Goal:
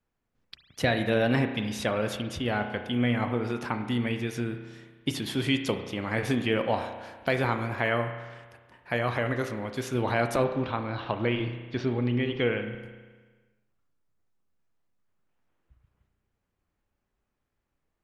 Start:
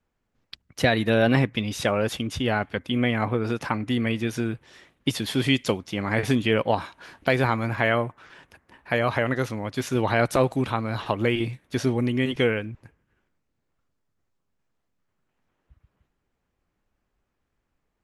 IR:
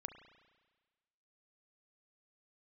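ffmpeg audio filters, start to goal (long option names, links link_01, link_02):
-filter_complex "[0:a]asplit=3[link_01][link_02][link_03];[link_01]afade=type=out:start_time=10.43:duration=0.02[link_04];[link_02]lowpass=frequency=4500:width=0.5412,lowpass=frequency=4500:width=1.3066,afade=type=in:start_time=10.43:duration=0.02,afade=type=out:start_time=12.7:duration=0.02[link_05];[link_03]afade=type=in:start_time=12.7:duration=0.02[link_06];[link_04][link_05][link_06]amix=inputs=3:normalize=0[link_07];[1:a]atrim=start_sample=2205[link_08];[link_07][link_08]afir=irnorm=-1:irlink=0"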